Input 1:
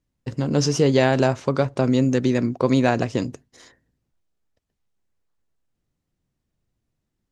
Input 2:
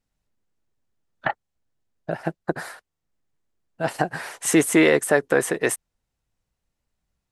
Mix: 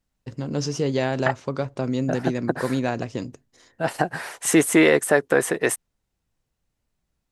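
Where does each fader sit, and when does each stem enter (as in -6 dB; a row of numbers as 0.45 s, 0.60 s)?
-6.0 dB, +0.5 dB; 0.00 s, 0.00 s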